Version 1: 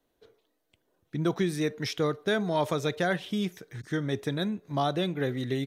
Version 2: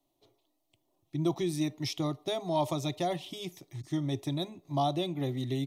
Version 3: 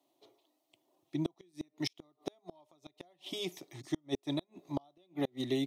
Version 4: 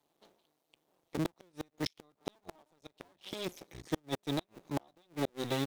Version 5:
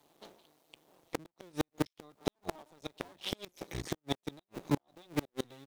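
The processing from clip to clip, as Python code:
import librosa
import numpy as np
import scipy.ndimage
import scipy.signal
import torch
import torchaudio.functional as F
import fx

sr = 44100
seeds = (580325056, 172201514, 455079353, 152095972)

y1 = fx.fixed_phaser(x, sr, hz=310.0, stages=8)
y2 = scipy.signal.sosfilt(scipy.signal.butter(2, 270.0, 'highpass', fs=sr, output='sos'), y1)
y2 = fx.gate_flip(y2, sr, shuts_db=-25.0, range_db=-37)
y2 = fx.high_shelf(y2, sr, hz=5900.0, db=-5.0)
y2 = y2 * 10.0 ** (4.0 / 20.0)
y3 = fx.cycle_switch(y2, sr, every=2, mode='muted')
y3 = y3 * 10.0 ** (2.0 / 20.0)
y4 = fx.gate_flip(y3, sr, shuts_db=-27.0, range_db=-31)
y4 = y4 * 10.0 ** (10.0 / 20.0)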